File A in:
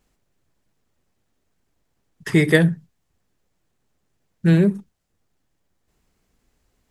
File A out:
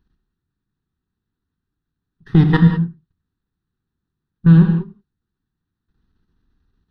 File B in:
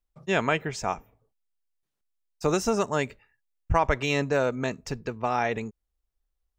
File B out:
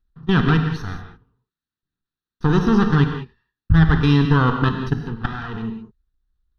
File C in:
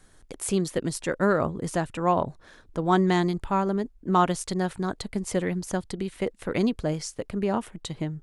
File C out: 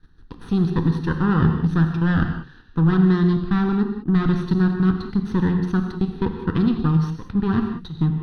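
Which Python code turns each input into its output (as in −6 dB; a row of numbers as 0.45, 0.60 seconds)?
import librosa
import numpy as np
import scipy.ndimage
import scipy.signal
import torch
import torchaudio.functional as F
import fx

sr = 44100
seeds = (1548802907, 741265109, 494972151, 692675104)

y = fx.lower_of_two(x, sr, delay_ms=0.5)
y = fx.dynamic_eq(y, sr, hz=150.0, q=3.4, threshold_db=-36.0, ratio=4.0, max_db=4)
y = fx.level_steps(y, sr, step_db=14)
y = fx.spacing_loss(y, sr, db_at_10k=23)
y = fx.fixed_phaser(y, sr, hz=2200.0, stages=6)
y = fx.rev_gated(y, sr, seeds[0], gate_ms=220, shape='flat', drr_db=4.5)
y = y * 10.0 ** (-20 / 20.0) / np.sqrt(np.mean(np.square(y)))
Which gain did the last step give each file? +6.5, +16.5, +12.5 decibels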